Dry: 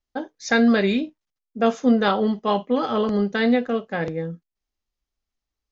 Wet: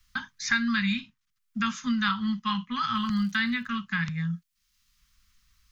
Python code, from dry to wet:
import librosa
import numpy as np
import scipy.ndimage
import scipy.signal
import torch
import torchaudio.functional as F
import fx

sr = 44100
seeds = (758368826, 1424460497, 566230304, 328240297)

y = scipy.signal.sosfilt(scipy.signal.cheby2(4, 40, [300.0, 740.0], 'bandstop', fs=sr, output='sos'), x)
y = fx.dmg_crackle(y, sr, seeds[0], per_s=190.0, level_db=-48.0, at=(2.94, 3.66), fade=0.02)
y = fx.band_squash(y, sr, depth_pct=70)